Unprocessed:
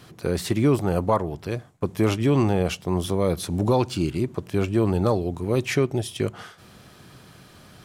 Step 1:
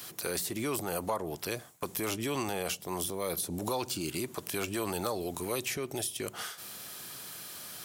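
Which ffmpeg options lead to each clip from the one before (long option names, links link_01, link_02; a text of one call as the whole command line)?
ffmpeg -i in.wav -filter_complex "[0:a]aemphasis=mode=production:type=riaa,acrossover=split=650[link_01][link_02];[link_01]alimiter=level_in=5dB:limit=-24dB:level=0:latency=1,volume=-5dB[link_03];[link_02]acompressor=threshold=-33dB:ratio=10[link_04];[link_03][link_04]amix=inputs=2:normalize=0" out.wav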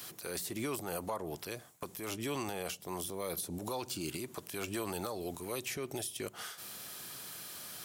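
ffmpeg -i in.wav -af "alimiter=level_in=1dB:limit=-24dB:level=0:latency=1:release=310,volume=-1dB,volume=-2dB" out.wav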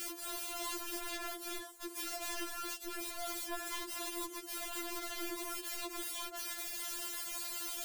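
ffmpeg -i in.wav -af "alimiter=level_in=13.5dB:limit=-24dB:level=0:latency=1:release=25,volume=-13.5dB,aeval=exprs='(mod(150*val(0)+1,2)-1)/150':channel_layout=same,afftfilt=real='re*4*eq(mod(b,16),0)':imag='im*4*eq(mod(b,16),0)':win_size=2048:overlap=0.75,volume=10dB" out.wav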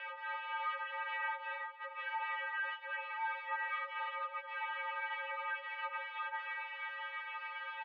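ffmpeg -i in.wav -af "aresample=16000,asoftclip=type=tanh:threshold=-38.5dB,aresample=44100,aecho=1:1:309|618|927|1236|1545:0.15|0.0763|0.0389|0.0198|0.0101,highpass=frequency=520:width_type=q:width=0.5412,highpass=frequency=520:width_type=q:width=1.307,lowpass=frequency=2300:width_type=q:width=0.5176,lowpass=frequency=2300:width_type=q:width=0.7071,lowpass=frequency=2300:width_type=q:width=1.932,afreqshift=200,volume=9.5dB" out.wav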